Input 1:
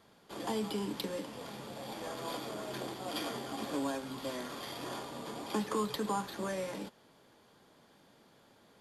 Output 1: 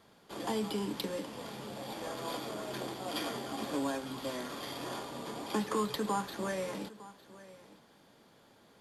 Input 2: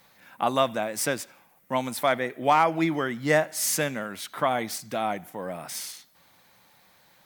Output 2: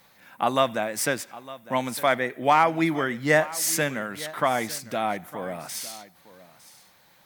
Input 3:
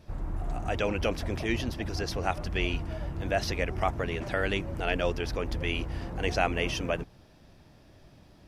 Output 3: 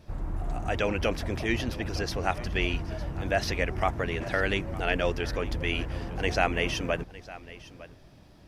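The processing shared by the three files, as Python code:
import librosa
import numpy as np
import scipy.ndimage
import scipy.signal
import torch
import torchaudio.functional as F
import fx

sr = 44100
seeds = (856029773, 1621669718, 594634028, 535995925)

p1 = fx.dynamic_eq(x, sr, hz=1800.0, q=2.2, threshold_db=-45.0, ratio=4.0, max_db=3)
p2 = p1 + fx.echo_single(p1, sr, ms=907, db=-18.0, dry=0)
y = F.gain(torch.from_numpy(p2), 1.0).numpy()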